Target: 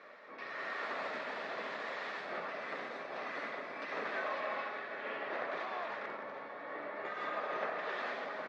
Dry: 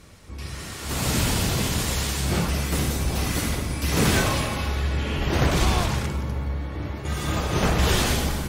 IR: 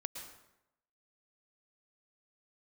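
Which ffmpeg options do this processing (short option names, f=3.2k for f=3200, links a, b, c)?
-af "acompressor=threshold=-30dB:ratio=12,highpass=f=320:w=0.5412,highpass=f=320:w=1.3066,equalizer=f=330:t=q:w=4:g=-8,equalizer=f=620:t=q:w=4:g=8,equalizer=f=1.2k:t=q:w=4:g=6,equalizer=f=1.8k:t=q:w=4:g=8,equalizer=f=3k:t=q:w=4:g=-8,lowpass=f=3.3k:w=0.5412,lowpass=f=3.3k:w=1.3066,aecho=1:1:769:0.211,volume=-3dB"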